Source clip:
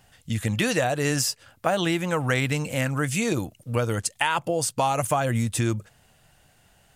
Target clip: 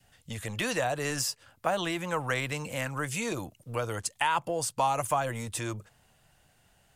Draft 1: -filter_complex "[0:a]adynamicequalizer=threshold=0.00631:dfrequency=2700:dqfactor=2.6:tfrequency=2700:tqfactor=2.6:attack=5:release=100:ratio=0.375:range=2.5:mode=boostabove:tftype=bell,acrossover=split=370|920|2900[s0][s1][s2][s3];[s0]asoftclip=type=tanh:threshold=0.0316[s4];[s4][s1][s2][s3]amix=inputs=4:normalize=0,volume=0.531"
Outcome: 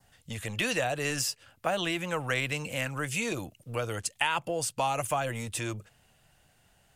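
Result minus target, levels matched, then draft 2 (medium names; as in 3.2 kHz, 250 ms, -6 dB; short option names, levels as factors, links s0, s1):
1 kHz band -3.0 dB
-filter_complex "[0:a]adynamicequalizer=threshold=0.00631:dfrequency=990:dqfactor=2.6:tfrequency=990:tqfactor=2.6:attack=5:release=100:ratio=0.375:range=2.5:mode=boostabove:tftype=bell,acrossover=split=370|920|2900[s0][s1][s2][s3];[s0]asoftclip=type=tanh:threshold=0.0316[s4];[s4][s1][s2][s3]amix=inputs=4:normalize=0,volume=0.531"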